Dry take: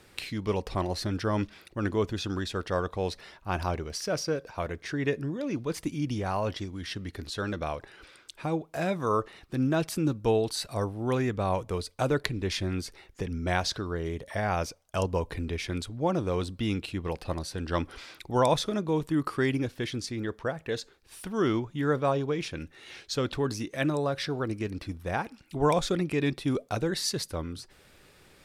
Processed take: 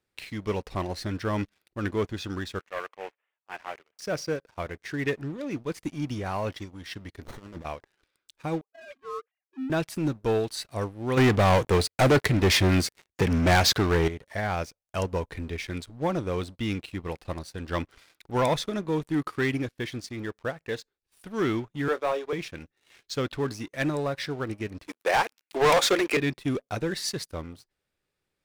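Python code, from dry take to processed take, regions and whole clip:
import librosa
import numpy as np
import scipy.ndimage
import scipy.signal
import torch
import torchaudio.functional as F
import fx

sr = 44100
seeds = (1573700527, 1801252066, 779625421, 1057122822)

y = fx.chain(x, sr, fx.cvsd(bps=16000),
    fx.highpass(hz=590.0, slope=12),
    fx.band_widen(depth_pct=100), at=(2.59, 3.99))
y = fx.chain(y, sr, fx.peak_eq(hz=7300.0, db=8.0, octaves=0.81),
    fx.over_compress(threshold_db=-35.0, ratio=-0.5),
    fx.running_max(window=17), at=(7.25, 7.65))
y = fx.chain(y, sr, fx.sine_speech(),
    fx.comb_fb(f0_hz=800.0, decay_s=0.23, harmonics='all', damping=0.0, mix_pct=60), at=(8.61, 9.7))
y = fx.chain(y, sr, fx.highpass(hz=63.0, slope=12),
    fx.leveller(passes=3), at=(11.17, 14.08))
y = fx.chain(y, sr, fx.highpass(hz=360.0, slope=24),
    fx.doubler(ms=24.0, db=-12), at=(21.88, 22.33))
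y = fx.chain(y, sr, fx.highpass(hz=380.0, slope=24),
    fx.leveller(passes=3), at=(24.87, 26.17))
y = fx.dynamic_eq(y, sr, hz=2000.0, q=1.9, threshold_db=-49.0, ratio=4.0, max_db=5)
y = fx.leveller(y, sr, passes=3)
y = fx.upward_expand(y, sr, threshold_db=-33.0, expansion=1.5)
y = y * librosa.db_to_amplitude(-7.5)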